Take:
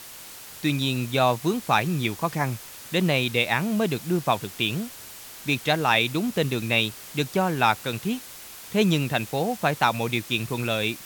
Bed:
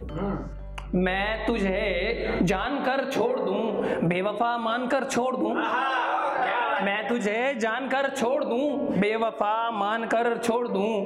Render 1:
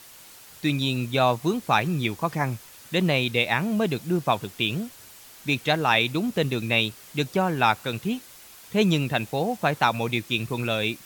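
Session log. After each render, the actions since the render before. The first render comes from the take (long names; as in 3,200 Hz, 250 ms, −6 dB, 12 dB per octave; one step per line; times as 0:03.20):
broadband denoise 6 dB, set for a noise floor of −42 dBFS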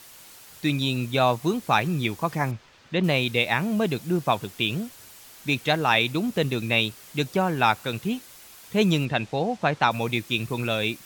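0:02.51–0:03.04: high-frequency loss of the air 170 metres
0:09.05–0:09.91: low-pass filter 5,600 Hz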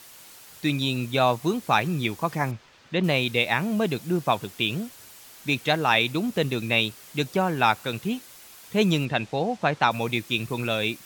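low-shelf EQ 83 Hz −5 dB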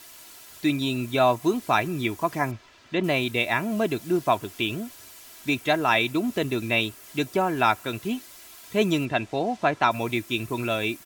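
dynamic equaliser 4,100 Hz, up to −5 dB, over −40 dBFS, Q 1.1
comb filter 3 ms, depth 50%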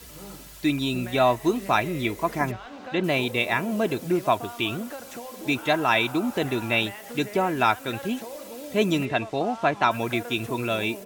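mix in bed −14 dB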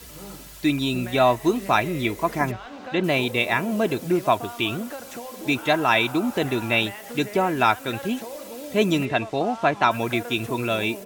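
level +2 dB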